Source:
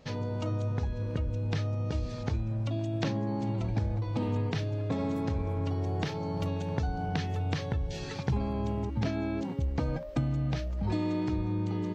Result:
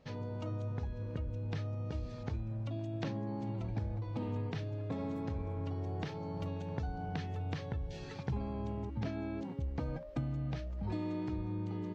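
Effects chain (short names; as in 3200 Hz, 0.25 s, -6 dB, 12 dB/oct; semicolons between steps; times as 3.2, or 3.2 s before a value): high shelf 4700 Hz -8 dB; gain -7 dB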